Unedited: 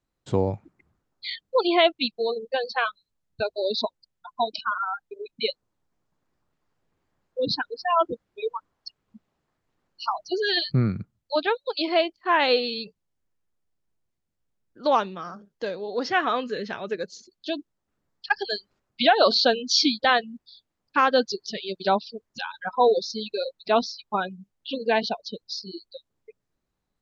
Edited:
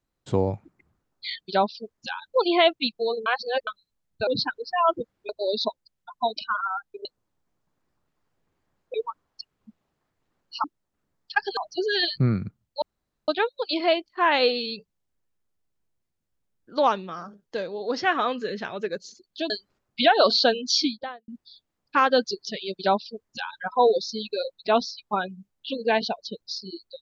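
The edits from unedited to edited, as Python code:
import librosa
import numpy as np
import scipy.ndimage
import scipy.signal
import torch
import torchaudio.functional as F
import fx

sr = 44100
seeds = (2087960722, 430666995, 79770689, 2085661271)

y = fx.studio_fade_out(x, sr, start_s=19.67, length_s=0.62)
y = fx.edit(y, sr, fx.reverse_span(start_s=2.45, length_s=0.41),
    fx.cut(start_s=5.22, length_s=0.28),
    fx.move(start_s=7.39, length_s=1.02, to_s=3.46),
    fx.insert_room_tone(at_s=11.36, length_s=0.46),
    fx.move(start_s=17.58, length_s=0.93, to_s=10.11),
    fx.duplicate(start_s=21.78, length_s=0.81, to_s=1.46), tone=tone)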